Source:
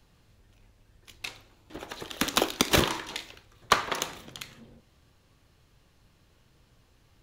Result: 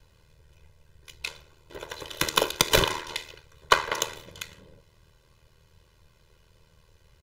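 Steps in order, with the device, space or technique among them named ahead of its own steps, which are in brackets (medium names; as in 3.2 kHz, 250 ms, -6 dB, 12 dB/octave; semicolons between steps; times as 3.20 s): ring-modulated robot voice (ring modulator 39 Hz; comb 2 ms, depth 74%); trim +3 dB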